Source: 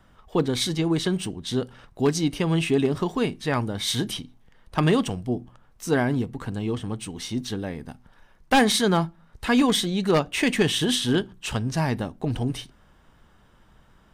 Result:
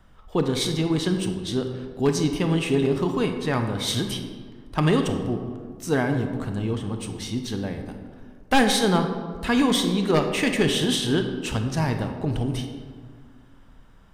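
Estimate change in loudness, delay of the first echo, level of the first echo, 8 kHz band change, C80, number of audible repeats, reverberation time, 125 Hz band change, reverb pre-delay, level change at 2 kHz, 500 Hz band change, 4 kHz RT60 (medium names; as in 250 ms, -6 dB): +0.5 dB, no echo, no echo, -0.5 dB, 8.5 dB, no echo, 1.8 s, +1.5 dB, 26 ms, 0.0 dB, +1.0 dB, 0.95 s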